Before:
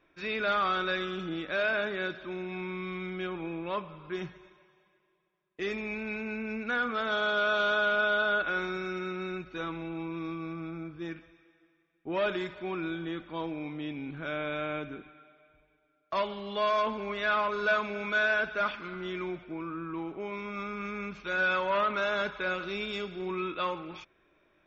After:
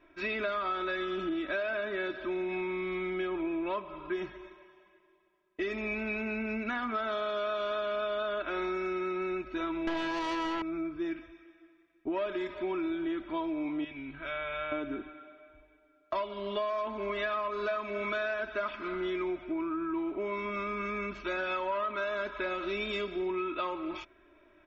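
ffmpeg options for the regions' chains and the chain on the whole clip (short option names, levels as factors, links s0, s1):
-filter_complex "[0:a]asettb=1/sr,asplit=3[s0][s1][s2];[s0]atrim=end=9.874[s3];[s1]atrim=start=9.87:end=10.62,asetpts=PTS-STARTPTS,afade=t=in:d=0.004:c=qsin,afade=t=out:st=0.746:d=0.004:c=qsin,lowshelf=f=69:g=-9,aeval=exprs='0.0422*sin(PI/2*4.47*val(0)/0.0422)':c=same[s4];[s2]atrim=start=10.616[s5];[s3][s4]acrossfade=d=0.004:c1=hsin:c2=qsin[s6];[s6][s5]acrossfade=d=0.004:c1=qsin:c2=hsin,asettb=1/sr,asplit=3[s7][s8][s9];[s7]atrim=end=13.844[s10];[s8]atrim=start=13.84:end=14.72,asetpts=PTS-STARTPTS,afade=t=in:d=0.004:c=qsin,afade=t=out:st=0.876:d=0.004:c=qsin,lowpass=3900,equalizer=f=410:t=o:w=2.8:g=-11,bandreject=f=300:w=8.2[s11];[s9]atrim=start=14.716[s12];[s10][s11]acrossfade=d=0.004:c1=hsin:c2=qsin[s13];[s13][s12]acrossfade=d=0.004:c1=qsin:c2=hsin,highshelf=f=4200:g=-9,aecho=1:1:3.1:0.8,acompressor=threshold=0.02:ratio=6,volume=1.5"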